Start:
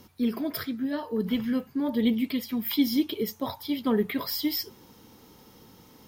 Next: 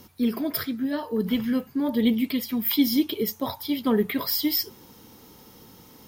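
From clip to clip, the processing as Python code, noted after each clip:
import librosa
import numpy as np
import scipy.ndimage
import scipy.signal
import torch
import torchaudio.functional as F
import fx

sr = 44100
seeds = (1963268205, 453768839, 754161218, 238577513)

y = fx.peak_eq(x, sr, hz=14000.0, db=4.5, octaves=1.4)
y = y * 10.0 ** (2.5 / 20.0)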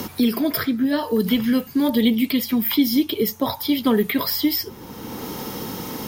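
y = fx.band_squash(x, sr, depth_pct=70)
y = y * 10.0 ** (5.0 / 20.0)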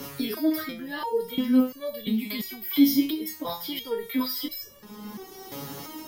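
y = fx.transient(x, sr, attack_db=1, sustain_db=6)
y = fx.resonator_held(y, sr, hz=2.9, low_hz=140.0, high_hz=570.0)
y = y * 10.0 ** (4.5 / 20.0)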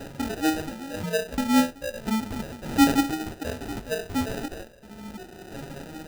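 y = fx.sample_hold(x, sr, seeds[0], rate_hz=1100.0, jitter_pct=0)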